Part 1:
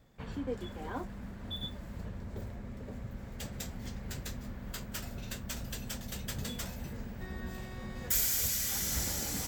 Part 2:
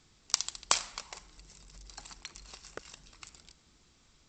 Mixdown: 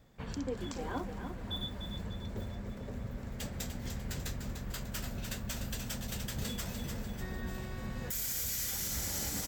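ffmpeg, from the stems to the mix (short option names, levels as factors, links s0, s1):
-filter_complex "[0:a]volume=1.12,asplit=2[s0][s1];[s1]volume=0.398[s2];[1:a]volume=0.1[s3];[s2]aecho=0:1:297|594|891|1188|1485|1782|2079:1|0.47|0.221|0.104|0.0488|0.0229|0.0108[s4];[s0][s3][s4]amix=inputs=3:normalize=0,alimiter=level_in=1.26:limit=0.0631:level=0:latency=1:release=97,volume=0.794"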